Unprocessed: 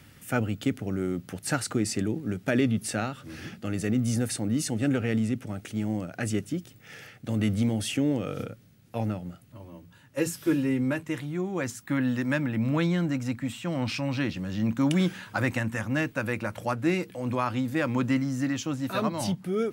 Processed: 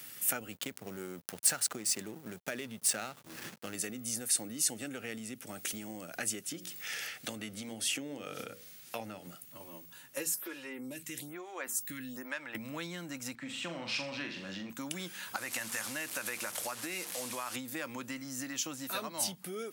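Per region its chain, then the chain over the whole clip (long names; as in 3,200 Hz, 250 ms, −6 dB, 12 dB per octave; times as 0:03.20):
0:00.52–0:03.75: parametric band 290 Hz −8 dB 0.22 octaves + slack as between gear wheels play −37.5 dBFS
0:06.44–0:09.27: high-shelf EQ 9,100 Hz −10.5 dB + mains-hum notches 60/120/180/240/300/360/420/480/540 Hz + one half of a high-frequency compander encoder only
0:10.34–0:12.55: downward compressor 2 to 1, threshold −33 dBFS + phaser with staggered stages 1.1 Hz
0:13.35–0:14.70: band-pass filter 120–4,400 Hz + flutter between parallel walls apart 7.1 metres, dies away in 0.43 s
0:15.36–0:17.56: linear delta modulator 64 kbit/s, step −37 dBFS + low-shelf EQ 420 Hz −6.5 dB + downward compressor 2.5 to 1, threshold −32 dBFS
whole clip: high-pass filter 110 Hz; downward compressor, threshold −34 dBFS; RIAA equalisation recording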